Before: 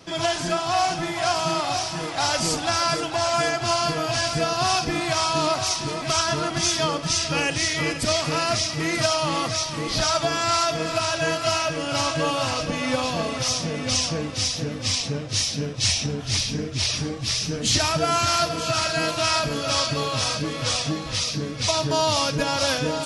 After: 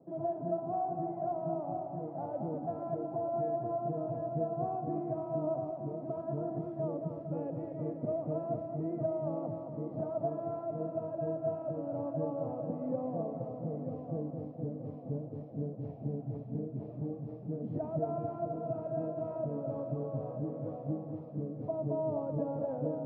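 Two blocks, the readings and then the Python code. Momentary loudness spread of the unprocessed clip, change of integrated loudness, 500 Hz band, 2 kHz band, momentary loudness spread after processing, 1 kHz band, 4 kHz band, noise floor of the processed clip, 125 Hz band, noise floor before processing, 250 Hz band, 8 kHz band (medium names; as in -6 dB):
4 LU, -14.0 dB, -8.0 dB, under -40 dB, 5 LU, -15.0 dB, under -40 dB, -44 dBFS, -9.5 dB, -31 dBFS, -8.0 dB, under -40 dB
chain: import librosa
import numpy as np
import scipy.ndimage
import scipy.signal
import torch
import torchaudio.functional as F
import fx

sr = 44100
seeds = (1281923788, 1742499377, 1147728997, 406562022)

p1 = scipy.signal.sosfilt(scipy.signal.cheby1(3, 1.0, [130.0, 690.0], 'bandpass', fs=sr, output='sos'), x)
p2 = p1 + fx.echo_single(p1, sr, ms=219, db=-6.5, dry=0)
y = F.gain(torch.from_numpy(p2), -8.5).numpy()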